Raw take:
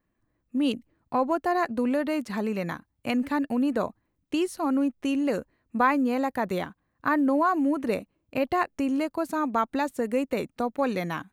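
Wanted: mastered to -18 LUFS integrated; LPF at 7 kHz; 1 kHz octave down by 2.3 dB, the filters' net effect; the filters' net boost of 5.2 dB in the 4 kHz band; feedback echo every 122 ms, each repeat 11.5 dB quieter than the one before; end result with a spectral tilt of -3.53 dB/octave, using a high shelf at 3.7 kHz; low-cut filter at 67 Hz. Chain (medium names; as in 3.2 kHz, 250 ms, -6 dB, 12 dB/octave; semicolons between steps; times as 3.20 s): high-pass 67 Hz; low-pass 7 kHz; peaking EQ 1 kHz -3.5 dB; treble shelf 3.7 kHz +6 dB; peaking EQ 4 kHz +4 dB; feedback delay 122 ms, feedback 27%, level -11.5 dB; trim +9.5 dB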